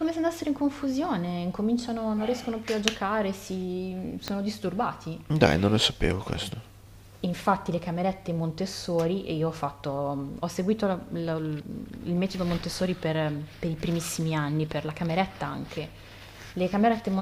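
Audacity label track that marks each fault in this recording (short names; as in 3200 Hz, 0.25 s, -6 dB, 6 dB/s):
4.280000	4.280000	pop -14 dBFS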